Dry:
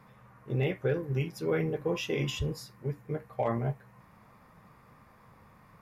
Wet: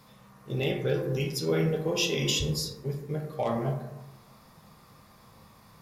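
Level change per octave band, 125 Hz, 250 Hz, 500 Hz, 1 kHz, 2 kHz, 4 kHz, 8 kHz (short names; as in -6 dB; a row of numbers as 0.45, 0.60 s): +1.5, +3.0, +2.5, +1.5, +3.0, +10.5, +13.0 dB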